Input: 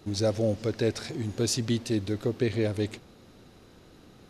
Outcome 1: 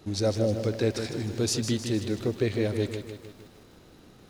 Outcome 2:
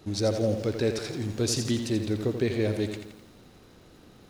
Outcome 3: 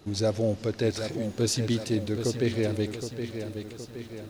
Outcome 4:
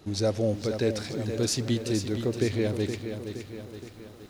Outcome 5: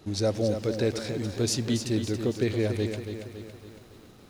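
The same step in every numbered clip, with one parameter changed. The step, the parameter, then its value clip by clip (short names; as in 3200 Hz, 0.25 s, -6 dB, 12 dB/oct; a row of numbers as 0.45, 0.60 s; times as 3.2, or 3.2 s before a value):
lo-fi delay, time: 155, 85, 769, 469, 279 ms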